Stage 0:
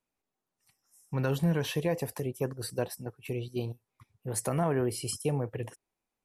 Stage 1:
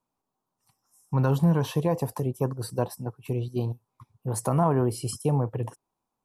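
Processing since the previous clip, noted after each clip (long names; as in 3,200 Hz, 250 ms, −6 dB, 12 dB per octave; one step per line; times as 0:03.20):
octave-band graphic EQ 125/250/1,000/2,000 Hz +7/+4/+12/−9 dB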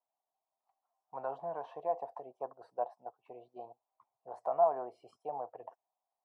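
four-pole ladder band-pass 740 Hz, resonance 75%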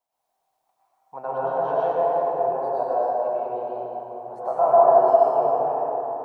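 dense smooth reverb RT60 4.2 s, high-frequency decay 0.45×, pre-delay 90 ms, DRR −10 dB
level +6 dB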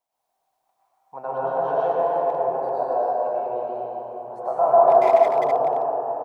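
far-end echo of a speakerphone 280 ms, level −7 dB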